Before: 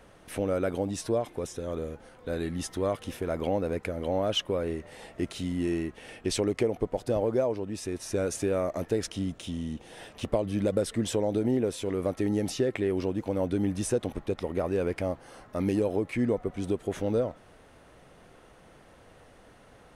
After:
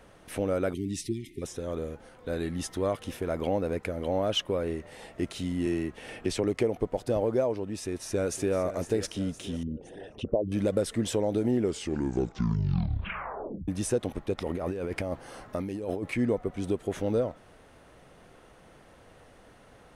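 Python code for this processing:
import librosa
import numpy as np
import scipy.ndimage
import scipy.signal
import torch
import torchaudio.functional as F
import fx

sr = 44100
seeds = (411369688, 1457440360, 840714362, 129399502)

y = fx.spec_erase(x, sr, start_s=0.74, length_s=0.68, low_hz=430.0, high_hz=1800.0)
y = fx.band_squash(y, sr, depth_pct=40, at=(5.66, 6.44))
y = fx.echo_throw(y, sr, start_s=7.78, length_s=0.76, ms=510, feedback_pct=65, wet_db=-12.5)
y = fx.envelope_sharpen(y, sr, power=2.0, at=(9.63, 10.52))
y = fx.over_compress(y, sr, threshold_db=-32.0, ratio=-1.0, at=(14.38, 16.14))
y = fx.edit(y, sr, fx.tape_stop(start_s=11.46, length_s=2.22), tone=tone)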